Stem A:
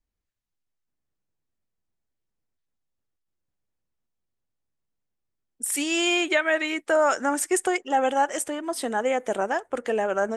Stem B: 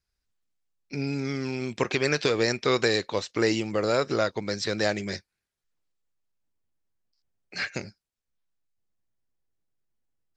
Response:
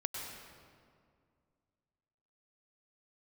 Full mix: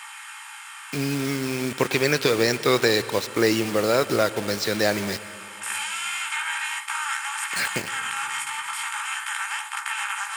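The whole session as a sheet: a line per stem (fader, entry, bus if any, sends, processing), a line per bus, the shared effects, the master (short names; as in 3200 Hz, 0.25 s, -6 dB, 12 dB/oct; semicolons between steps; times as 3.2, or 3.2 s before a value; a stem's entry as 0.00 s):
-7.0 dB, 0.00 s, no send, per-bin compression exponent 0.2; Chebyshev high-pass 900 Hz, order 6; chorus voices 2, 0.2 Hz, delay 16 ms, depth 1 ms
+2.0 dB, 0.00 s, send -13 dB, bit-crush 6-bit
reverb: on, RT60 2.2 s, pre-delay 93 ms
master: HPF 92 Hz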